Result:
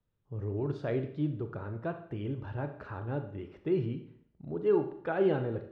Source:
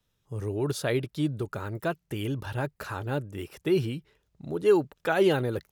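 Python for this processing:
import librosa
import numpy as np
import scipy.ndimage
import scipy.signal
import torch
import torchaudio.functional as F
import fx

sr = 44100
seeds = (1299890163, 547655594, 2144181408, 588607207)

y = fx.spacing_loss(x, sr, db_at_10k=42)
y = fx.rev_schroeder(y, sr, rt60_s=0.61, comb_ms=27, drr_db=7.0)
y = y * librosa.db_to_amplitude(-3.5)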